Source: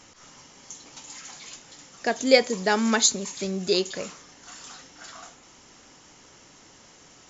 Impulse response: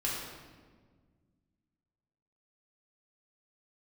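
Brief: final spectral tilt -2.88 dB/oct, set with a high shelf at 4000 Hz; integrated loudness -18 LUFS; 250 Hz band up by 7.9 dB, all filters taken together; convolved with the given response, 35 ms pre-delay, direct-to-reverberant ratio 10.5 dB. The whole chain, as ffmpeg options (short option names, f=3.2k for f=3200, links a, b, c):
-filter_complex "[0:a]equalizer=f=250:t=o:g=9,highshelf=f=4k:g=5,asplit=2[a][b];[1:a]atrim=start_sample=2205,adelay=35[c];[b][c]afir=irnorm=-1:irlink=0,volume=-16.5dB[d];[a][d]amix=inputs=2:normalize=0,volume=1dB"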